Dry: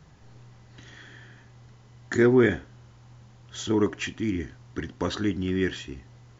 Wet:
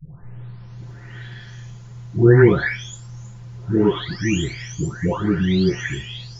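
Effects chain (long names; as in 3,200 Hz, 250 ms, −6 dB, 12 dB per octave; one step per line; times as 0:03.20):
every frequency bin delayed by itself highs late, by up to 907 ms
low shelf with overshoot 190 Hz +7 dB, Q 1.5
level +9 dB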